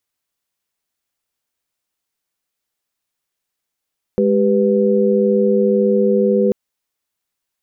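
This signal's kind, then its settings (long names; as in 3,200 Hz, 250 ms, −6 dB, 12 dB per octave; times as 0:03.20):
held notes G#3/G4/B4 sine, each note −16 dBFS 2.34 s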